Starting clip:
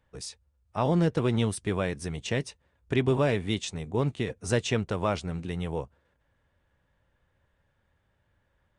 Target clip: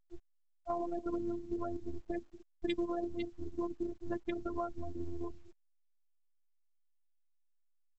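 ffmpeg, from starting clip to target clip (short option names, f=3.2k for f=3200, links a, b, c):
-filter_complex "[0:a]equalizer=f=87:t=o:w=0.43:g=4.5,asplit=2[a][b];[b]adelay=256.6,volume=-14dB,highshelf=f=4k:g=-5.77[c];[a][c]amix=inputs=2:normalize=0,acrossover=split=1400[d][e];[e]acrusher=bits=3:mix=0:aa=0.000001[f];[d][f]amix=inputs=2:normalize=0,equalizer=f=470:t=o:w=2.9:g=-7,bandreject=f=50:t=h:w=6,bandreject=f=100:t=h:w=6,bandreject=f=150:t=h:w=6,bandreject=f=200:t=h:w=6,bandreject=f=250:t=h:w=6,bandreject=f=300:t=h:w=6,afftfilt=real='re*gte(hypot(re,im),0.0251)':imag='im*gte(hypot(re,im),0.0251)':win_size=1024:overlap=0.75,aecho=1:1:4.4:0.58,afftfilt=real='hypot(re,im)*cos(PI*b)':imag='0':win_size=512:overlap=0.75,acompressor=threshold=-42dB:ratio=3,atempo=1.1,volume=7.5dB" -ar 16000 -c:a pcm_alaw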